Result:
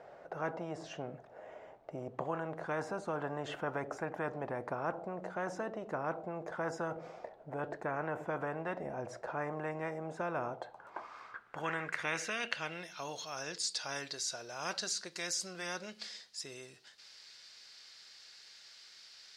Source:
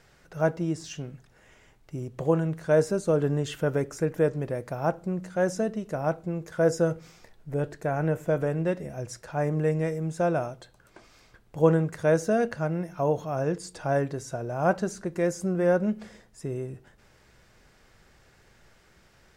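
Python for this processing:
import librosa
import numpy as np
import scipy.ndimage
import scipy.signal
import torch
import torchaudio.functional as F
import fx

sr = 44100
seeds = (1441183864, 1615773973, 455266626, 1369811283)

y = fx.filter_sweep_bandpass(x, sr, from_hz=640.0, to_hz=4500.0, start_s=10.41, end_s=13.14, q=3.5)
y = fx.spectral_comp(y, sr, ratio=4.0)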